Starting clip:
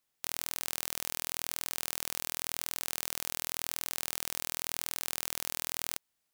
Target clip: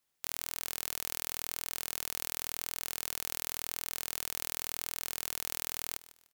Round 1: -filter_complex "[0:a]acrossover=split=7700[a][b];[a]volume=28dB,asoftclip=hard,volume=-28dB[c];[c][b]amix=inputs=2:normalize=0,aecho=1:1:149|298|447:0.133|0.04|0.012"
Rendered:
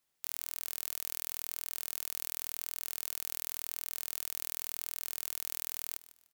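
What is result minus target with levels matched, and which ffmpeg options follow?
overloaded stage: distortion +6 dB
-filter_complex "[0:a]acrossover=split=7700[a][b];[a]volume=20.5dB,asoftclip=hard,volume=-20.5dB[c];[c][b]amix=inputs=2:normalize=0,aecho=1:1:149|298|447:0.133|0.04|0.012"

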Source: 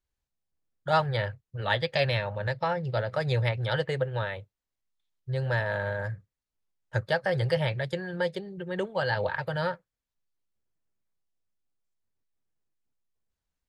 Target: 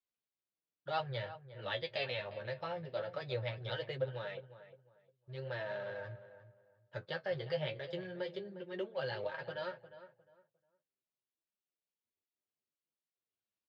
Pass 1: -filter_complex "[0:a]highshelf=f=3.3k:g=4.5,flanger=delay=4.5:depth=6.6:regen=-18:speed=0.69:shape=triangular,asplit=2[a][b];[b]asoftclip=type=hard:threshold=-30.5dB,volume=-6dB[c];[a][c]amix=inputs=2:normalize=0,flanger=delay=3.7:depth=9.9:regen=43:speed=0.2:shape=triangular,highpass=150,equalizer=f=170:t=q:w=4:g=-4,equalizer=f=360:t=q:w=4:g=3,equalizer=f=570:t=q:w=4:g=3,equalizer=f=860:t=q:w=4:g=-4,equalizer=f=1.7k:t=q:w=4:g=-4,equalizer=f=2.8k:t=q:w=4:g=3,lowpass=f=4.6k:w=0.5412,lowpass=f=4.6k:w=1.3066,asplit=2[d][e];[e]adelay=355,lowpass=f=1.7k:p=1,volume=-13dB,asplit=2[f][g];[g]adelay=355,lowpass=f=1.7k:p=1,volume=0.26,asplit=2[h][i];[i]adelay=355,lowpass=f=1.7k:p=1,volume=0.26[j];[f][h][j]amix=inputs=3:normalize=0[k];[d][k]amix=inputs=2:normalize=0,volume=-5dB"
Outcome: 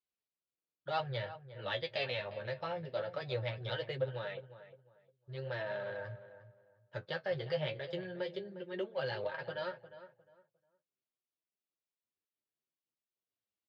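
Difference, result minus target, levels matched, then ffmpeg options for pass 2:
hard clip: distortion -5 dB
-filter_complex "[0:a]highshelf=f=3.3k:g=4.5,flanger=delay=4.5:depth=6.6:regen=-18:speed=0.69:shape=triangular,asplit=2[a][b];[b]asoftclip=type=hard:threshold=-40.5dB,volume=-6dB[c];[a][c]amix=inputs=2:normalize=0,flanger=delay=3.7:depth=9.9:regen=43:speed=0.2:shape=triangular,highpass=150,equalizer=f=170:t=q:w=4:g=-4,equalizer=f=360:t=q:w=4:g=3,equalizer=f=570:t=q:w=4:g=3,equalizer=f=860:t=q:w=4:g=-4,equalizer=f=1.7k:t=q:w=4:g=-4,equalizer=f=2.8k:t=q:w=4:g=3,lowpass=f=4.6k:w=0.5412,lowpass=f=4.6k:w=1.3066,asplit=2[d][e];[e]adelay=355,lowpass=f=1.7k:p=1,volume=-13dB,asplit=2[f][g];[g]adelay=355,lowpass=f=1.7k:p=1,volume=0.26,asplit=2[h][i];[i]adelay=355,lowpass=f=1.7k:p=1,volume=0.26[j];[f][h][j]amix=inputs=3:normalize=0[k];[d][k]amix=inputs=2:normalize=0,volume=-5dB"

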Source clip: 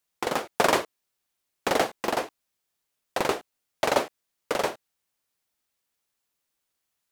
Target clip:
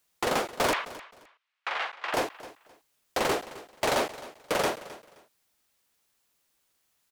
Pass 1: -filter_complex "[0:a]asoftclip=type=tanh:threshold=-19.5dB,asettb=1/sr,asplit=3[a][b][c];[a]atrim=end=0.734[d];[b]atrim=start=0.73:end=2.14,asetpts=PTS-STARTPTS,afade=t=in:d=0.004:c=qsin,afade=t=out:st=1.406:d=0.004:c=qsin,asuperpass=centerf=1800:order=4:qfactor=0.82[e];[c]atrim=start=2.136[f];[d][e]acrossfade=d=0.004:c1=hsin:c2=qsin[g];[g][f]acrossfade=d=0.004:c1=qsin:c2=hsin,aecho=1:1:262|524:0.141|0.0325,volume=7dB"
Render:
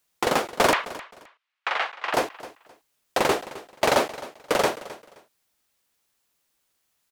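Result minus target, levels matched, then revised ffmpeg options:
soft clip: distortion -6 dB
-filter_complex "[0:a]asoftclip=type=tanh:threshold=-29dB,asettb=1/sr,asplit=3[a][b][c];[a]atrim=end=0.734[d];[b]atrim=start=0.73:end=2.14,asetpts=PTS-STARTPTS,afade=t=in:d=0.004:c=qsin,afade=t=out:st=1.406:d=0.004:c=qsin,asuperpass=centerf=1800:order=4:qfactor=0.82[e];[c]atrim=start=2.136[f];[d][e]acrossfade=d=0.004:c1=hsin:c2=qsin[g];[g][f]acrossfade=d=0.004:c1=qsin:c2=hsin,aecho=1:1:262|524:0.141|0.0325,volume=7dB"

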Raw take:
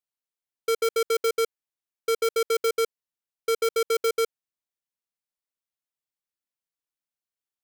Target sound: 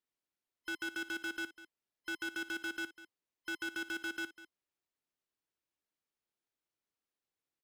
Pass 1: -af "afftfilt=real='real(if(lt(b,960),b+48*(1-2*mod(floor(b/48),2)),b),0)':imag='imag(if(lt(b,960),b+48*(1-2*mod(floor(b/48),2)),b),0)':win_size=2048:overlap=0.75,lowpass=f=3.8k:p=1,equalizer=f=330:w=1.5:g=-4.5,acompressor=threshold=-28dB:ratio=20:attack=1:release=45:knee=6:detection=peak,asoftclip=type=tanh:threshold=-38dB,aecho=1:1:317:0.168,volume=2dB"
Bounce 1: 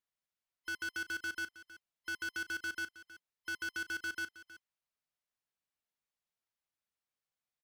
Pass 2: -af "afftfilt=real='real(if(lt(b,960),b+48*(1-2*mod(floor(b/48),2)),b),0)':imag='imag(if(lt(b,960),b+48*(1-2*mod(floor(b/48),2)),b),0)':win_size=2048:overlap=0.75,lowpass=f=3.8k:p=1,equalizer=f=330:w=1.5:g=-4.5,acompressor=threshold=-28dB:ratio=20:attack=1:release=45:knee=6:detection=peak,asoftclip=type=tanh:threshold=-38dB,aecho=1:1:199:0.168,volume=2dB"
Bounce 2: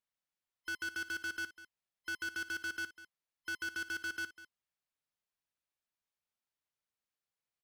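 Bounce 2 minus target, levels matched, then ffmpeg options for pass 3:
250 Hz band -8.5 dB
-af "afftfilt=real='real(if(lt(b,960),b+48*(1-2*mod(floor(b/48),2)),b),0)':imag='imag(if(lt(b,960),b+48*(1-2*mod(floor(b/48),2)),b),0)':win_size=2048:overlap=0.75,lowpass=f=3.8k:p=1,equalizer=f=330:w=1.5:g=6,acompressor=threshold=-28dB:ratio=20:attack=1:release=45:knee=6:detection=peak,asoftclip=type=tanh:threshold=-38dB,aecho=1:1:199:0.168,volume=2dB"

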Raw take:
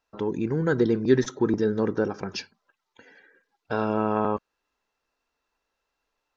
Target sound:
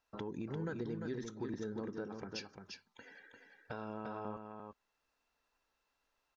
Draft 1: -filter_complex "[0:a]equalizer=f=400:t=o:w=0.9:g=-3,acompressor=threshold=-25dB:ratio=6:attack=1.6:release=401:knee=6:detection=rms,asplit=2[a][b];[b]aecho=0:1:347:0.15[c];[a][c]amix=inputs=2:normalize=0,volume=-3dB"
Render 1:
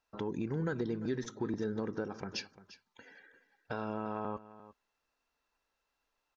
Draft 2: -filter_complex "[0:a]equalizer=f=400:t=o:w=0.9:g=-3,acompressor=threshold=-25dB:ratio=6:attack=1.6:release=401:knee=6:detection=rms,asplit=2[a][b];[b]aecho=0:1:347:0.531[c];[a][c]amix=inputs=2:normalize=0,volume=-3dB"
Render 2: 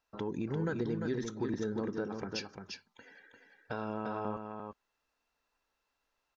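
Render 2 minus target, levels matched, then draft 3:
compressor: peak gain reduction -6.5 dB
-filter_complex "[0:a]equalizer=f=400:t=o:w=0.9:g=-3,acompressor=threshold=-32.5dB:ratio=6:attack=1.6:release=401:knee=6:detection=rms,asplit=2[a][b];[b]aecho=0:1:347:0.531[c];[a][c]amix=inputs=2:normalize=0,volume=-3dB"

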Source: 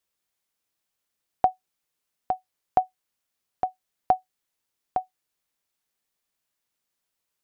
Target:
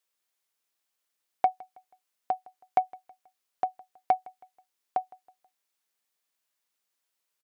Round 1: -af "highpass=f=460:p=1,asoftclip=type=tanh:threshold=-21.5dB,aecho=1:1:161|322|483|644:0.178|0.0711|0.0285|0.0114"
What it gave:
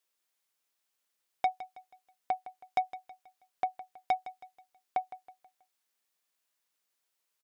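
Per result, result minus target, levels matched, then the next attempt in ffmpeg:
soft clip: distortion +13 dB; echo-to-direct +8 dB
-af "highpass=f=460:p=1,asoftclip=type=tanh:threshold=-10.5dB,aecho=1:1:161|322|483|644:0.178|0.0711|0.0285|0.0114"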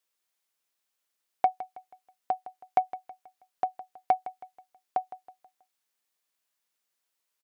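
echo-to-direct +8 dB
-af "highpass=f=460:p=1,asoftclip=type=tanh:threshold=-10.5dB,aecho=1:1:161|322|483:0.0708|0.0283|0.0113"

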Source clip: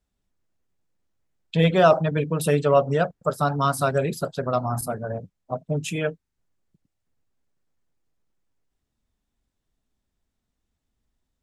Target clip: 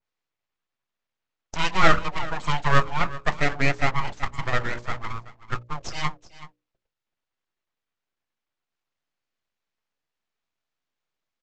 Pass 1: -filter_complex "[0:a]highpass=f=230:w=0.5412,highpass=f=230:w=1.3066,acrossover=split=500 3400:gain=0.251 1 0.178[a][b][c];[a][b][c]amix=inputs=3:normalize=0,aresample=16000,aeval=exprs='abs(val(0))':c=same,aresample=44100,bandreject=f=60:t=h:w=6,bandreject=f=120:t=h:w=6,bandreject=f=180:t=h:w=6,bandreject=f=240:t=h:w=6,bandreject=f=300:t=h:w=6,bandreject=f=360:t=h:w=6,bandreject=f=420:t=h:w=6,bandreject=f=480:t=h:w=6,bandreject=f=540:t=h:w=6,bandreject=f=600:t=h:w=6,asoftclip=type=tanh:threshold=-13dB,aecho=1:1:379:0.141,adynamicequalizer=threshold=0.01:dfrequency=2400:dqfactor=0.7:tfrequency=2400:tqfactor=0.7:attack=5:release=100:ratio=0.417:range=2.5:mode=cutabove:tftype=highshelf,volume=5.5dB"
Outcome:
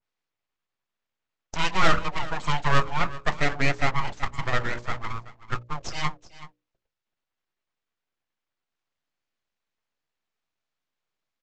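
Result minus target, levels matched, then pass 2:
soft clip: distortion +15 dB
-filter_complex "[0:a]highpass=f=230:w=0.5412,highpass=f=230:w=1.3066,acrossover=split=500 3400:gain=0.251 1 0.178[a][b][c];[a][b][c]amix=inputs=3:normalize=0,aresample=16000,aeval=exprs='abs(val(0))':c=same,aresample=44100,bandreject=f=60:t=h:w=6,bandreject=f=120:t=h:w=6,bandreject=f=180:t=h:w=6,bandreject=f=240:t=h:w=6,bandreject=f=300:t=h:w=6,bandreject=f=360:t=h:w=6,bandreject=f=420:t=h:w=6,bandreject=f=480:t=h:w=6,bandreject=f=540:t=h:w=6,bandreject=f=600:t=h:w=6,asoftclip=type=tanh:threshold=-3.5dB,aecho=1:1:379:0.141,adynamicequalizer=threshold=0.01:dfrequency=2400:dqfactor=0.7:tfrequency=2400:tqfactor=0.7:attack=5:release=100:ratio=0.417:range=2.5:mode=cutabove:tftype=highshelf,volume=5.5dB"

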